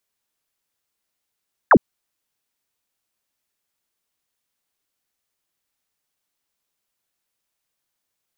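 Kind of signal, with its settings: laser zap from 1900 Hz, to 160 Hz, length 0.06 s sine, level -7 dB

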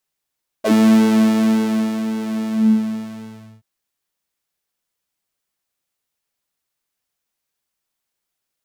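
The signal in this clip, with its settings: synth patch with pulse-width modulation A3, detune 27 cents, sub -7 dB, filter highpass, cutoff 110 Hz, Q 9.9, filter envelope 2.5 oct, filter decay 0.07 s, filter sustain 50%, attack 24 ms, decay 1.39 s, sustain -12 dB, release 1.17 s, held 1.81 s, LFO 1.8 Hz, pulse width 47%, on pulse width 11%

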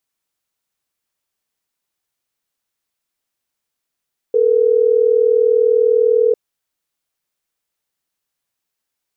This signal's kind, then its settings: call progress tone ringback tone, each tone -13 dBFS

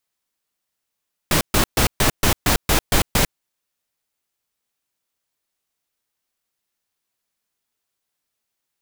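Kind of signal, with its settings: noise bursts pink, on 0.10 s, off 0.13 s, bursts 9, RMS -16 dBFS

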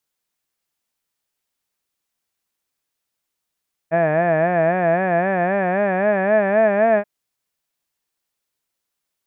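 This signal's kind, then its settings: formant-synthesis vowel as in had, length 3.13 s, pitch 159 Hz, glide +5.5 st, vibrato 3.8 Hz, vibrato depth 1.15 st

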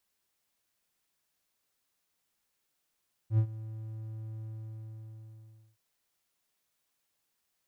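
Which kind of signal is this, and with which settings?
ADSR triangle 110 Hz, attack 82 ms, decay 79 ms, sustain -18 dB, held 1.12 s, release 1.35 s -18 dBFS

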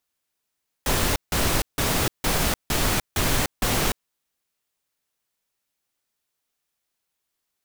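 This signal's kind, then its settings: noise bursts pink, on 0.30 s, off 0.16 s, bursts 7, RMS -22 dBFS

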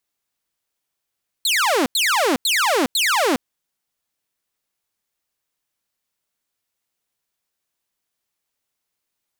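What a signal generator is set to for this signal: burst of laser zaps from 4400 Hz, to 230 Hz, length 0.41 s saw, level -13 dB, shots 4, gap 0.09 s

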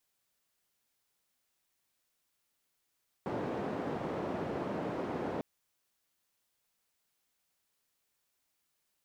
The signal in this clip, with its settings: noise band 150–550 Hz, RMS -36.5 dBFS 2.15 s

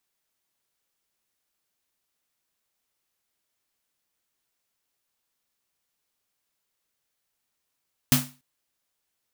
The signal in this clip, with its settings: snare drum length 0.29 s, tones 140 Hz, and 250 Hz, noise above 560 Hz, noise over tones 0 dB, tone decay 0.31 s, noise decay 0.31 s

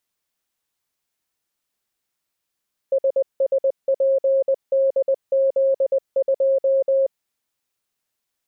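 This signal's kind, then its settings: Morse "SSPDZ2" 20 wpm 540 Hz -14.5 dBFS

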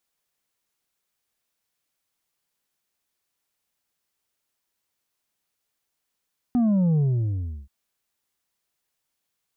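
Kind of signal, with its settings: sub drop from 250 Hz, over 1.13 s, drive 4.5 dB, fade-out 0.71 s, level -18 dB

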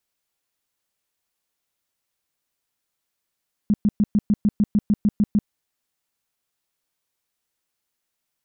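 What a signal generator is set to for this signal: tone bursts 208 Hz, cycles 8, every 0.15 s, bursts 12, -13.5 dBFS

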